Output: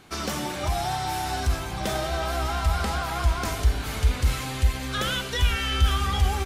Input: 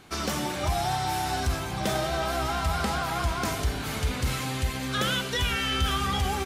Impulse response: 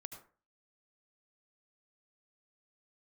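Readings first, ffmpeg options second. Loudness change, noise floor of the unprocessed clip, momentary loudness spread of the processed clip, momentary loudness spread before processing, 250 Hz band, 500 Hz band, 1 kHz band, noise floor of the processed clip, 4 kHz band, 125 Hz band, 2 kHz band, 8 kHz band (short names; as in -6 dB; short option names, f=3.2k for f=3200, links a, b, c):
+1.5 dB, -33 dBFS, 5 LU, 4 LU, -1.5 dB, -0.5 dB, 0.0 dB, -33 dBFS, 0.0 dB, +4.0 dB, 0.0 dB, 0.0 dB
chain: -af "asubboost=boost=5.5:cutoff=65"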